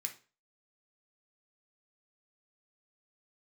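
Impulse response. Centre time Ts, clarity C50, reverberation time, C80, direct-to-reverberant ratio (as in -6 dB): 10 ms, 12.0 dB, 0.35 s, 19.0 dB, 3.0 dB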